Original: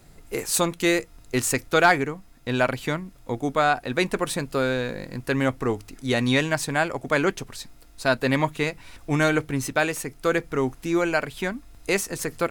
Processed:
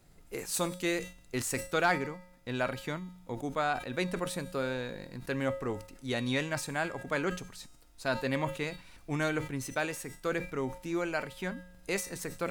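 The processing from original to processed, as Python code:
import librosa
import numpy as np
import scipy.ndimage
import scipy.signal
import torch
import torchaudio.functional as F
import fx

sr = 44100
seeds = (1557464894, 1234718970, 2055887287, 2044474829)

y = fx.comb_fb(x, sr, f0_hz=180.0, decay_s=0.82, harmonics='odd', damping=0.0, mix_pct=70)
y = fx.sustainer(y, sr, db_per_s=130.0)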